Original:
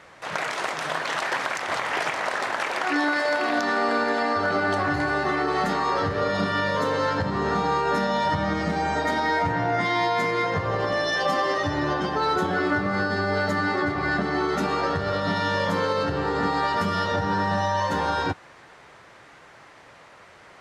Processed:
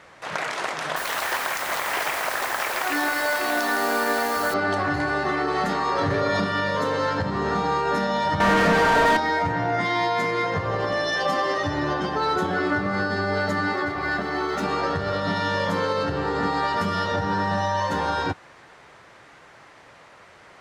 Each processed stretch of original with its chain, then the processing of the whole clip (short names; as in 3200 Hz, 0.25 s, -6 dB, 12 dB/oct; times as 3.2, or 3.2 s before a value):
0.96–4.54 low shelf 210 Hz -11.5 dB + echo 0.162 s -7 dB + requantised 6-bit, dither triangular
5.98–6.4 comb 7.3 ms, depth 52% + fast leveller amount 100%
8.4–9.17 comb 4.4 ms, depth 90% + overdrive pedal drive 32 dB, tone 1500 Hz, clips at -10.5 dBFS
13.73–14.63 median filter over 3 samples + bell 160 Hz -6.5 dB 1.9 oct
whole clip: dry